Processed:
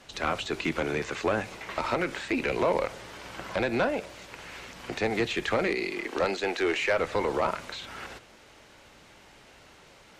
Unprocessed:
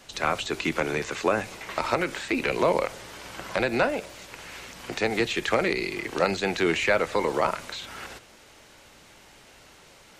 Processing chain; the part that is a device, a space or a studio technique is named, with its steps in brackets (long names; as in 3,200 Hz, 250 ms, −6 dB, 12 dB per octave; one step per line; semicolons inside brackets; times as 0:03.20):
0:05.67–0:06.97: high-pass filter 160 Hz → 370 Hz 24 dB per octave
tube preamp driven hard (tube saturation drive 17 dB, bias 0.25; high-shelf EQ 6,400 Hz −9 dB)